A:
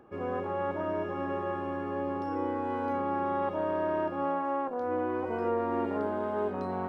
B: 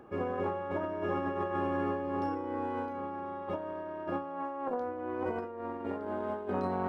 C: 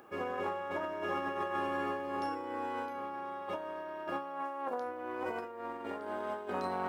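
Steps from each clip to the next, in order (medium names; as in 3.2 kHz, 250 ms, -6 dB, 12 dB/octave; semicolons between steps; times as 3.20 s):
compressor with a negative ratio -34 dBFS, ratio -0.5
tilt EQ +3.5 dB/octave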